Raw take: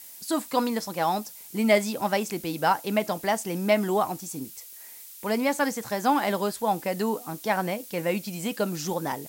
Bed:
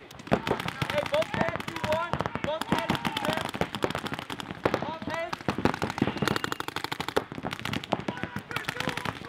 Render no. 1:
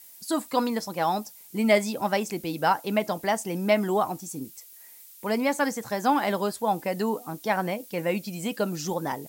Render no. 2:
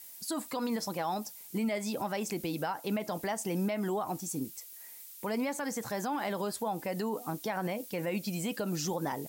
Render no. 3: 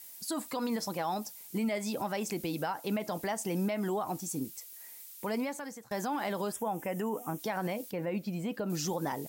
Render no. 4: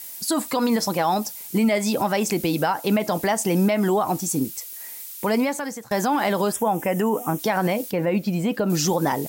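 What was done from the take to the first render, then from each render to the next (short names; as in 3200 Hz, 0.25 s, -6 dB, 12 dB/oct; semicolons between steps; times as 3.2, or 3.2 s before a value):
denoiser 6 dB, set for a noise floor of -45 dBFS
compressor, threshold -25 dBFS, peak gain reduction 10 dB; limiter -24.5 dBFS, peak gain reduction 8.5 dB
5.34–5.91 fade out, to -23.5 dB; 6.52–7.39 Butterworth band-stop 4300 Hz, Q 1.8; 7.91–8.7 bell 9400 Hz -14 dB 2.7 oct
gain +12 dB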